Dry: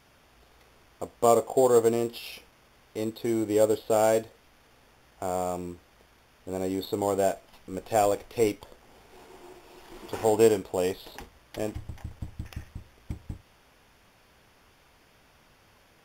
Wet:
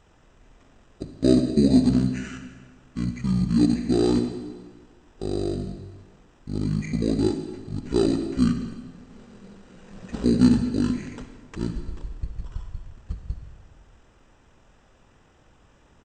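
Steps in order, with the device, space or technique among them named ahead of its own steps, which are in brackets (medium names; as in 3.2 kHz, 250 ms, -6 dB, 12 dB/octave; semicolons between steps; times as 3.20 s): monster voice (pitch shift -10.5 st; bass shelf 190 Hz +7.5 dB; reverberation RT60 1.4 s, pre-delay 52 ms, DRR 7.5 dB)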